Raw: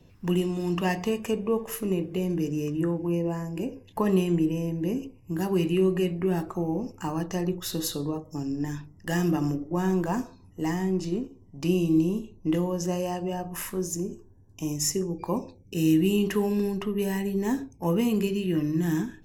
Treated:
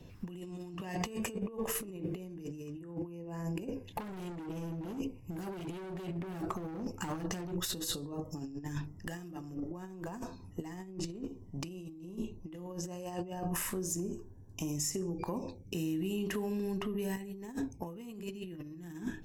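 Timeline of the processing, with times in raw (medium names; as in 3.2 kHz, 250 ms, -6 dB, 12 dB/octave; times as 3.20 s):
3.87–7.67 s: overload inside the chain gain 29 dB
13.56–17.17 s: compression, threshold -35 dBFS
whole clip: dynamic bell 8.1 kHz, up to +6 dB, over -60 dBFS, Q 5.2; peak limiter -22 dBFS; compressor with a negative ratio -35 dBFS, ratio -0.5; trim -2.5 dB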